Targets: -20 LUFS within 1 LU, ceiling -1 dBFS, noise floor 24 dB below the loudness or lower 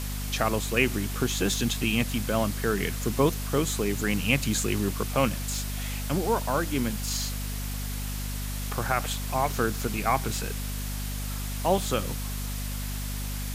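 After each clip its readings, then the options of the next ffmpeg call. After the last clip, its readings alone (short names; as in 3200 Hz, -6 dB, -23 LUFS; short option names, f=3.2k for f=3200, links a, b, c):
hum 50 Hz; harmonics up to 250 Hz; hum level -30 dBFS; noise floor -32 dBFS; noise floor target -52 dBFS; loudness -28.0 LUFS; peak -7.5 dBFS; loudness target -20.0 LUFS
-> -af "bandreject=f=50:t=h:w=4,bandreject=f=100:t=h:w=4,bandreject=f=150:t=h:w=4,bandreject=f=200:t=h:w=4,bandreject=f=250:t=h:w=4"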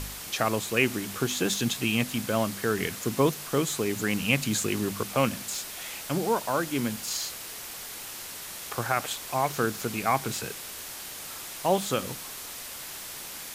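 hum none; noise floor -40 dBFS; noise floor target -53 dBFS
-> -af "afftdn=nr=13:nf=-40"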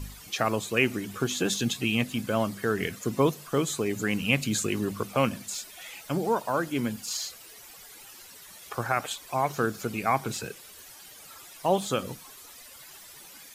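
noise floor -49 dBFS; noise floor target -53 dBFS
-> -af "afftdn=nr=6:nf=-49"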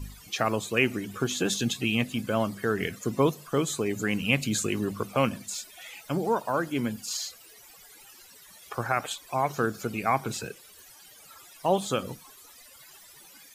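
noise floor -52 dBFS; noise floor target -53 dBFS
-> -af "afftdn=nr=6:nf=-52"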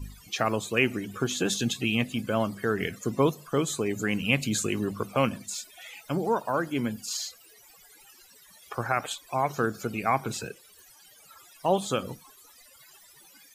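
noise floor -55 dBFS; loudness -28.5 LUFS; peak -7.5 dBFS; loudness target -20.0 LUFS
-> -af "volume=8.5dB,alimiter=limit=-1dB:level=0:latency=1"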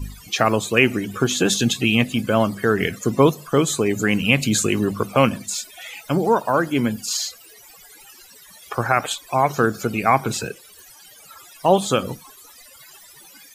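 loudness -20.0 LUFS; peak -1.0 dBFS; noise floor -47 dBFS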